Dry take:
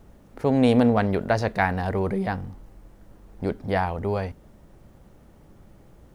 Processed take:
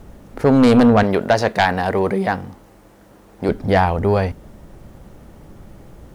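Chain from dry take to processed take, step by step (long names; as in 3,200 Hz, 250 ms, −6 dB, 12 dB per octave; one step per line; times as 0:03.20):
0:01.03–0:03.49: high-pass filter 290 Hz 6 dB per octave
sine wavefolder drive 6 dB, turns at −6 dBFS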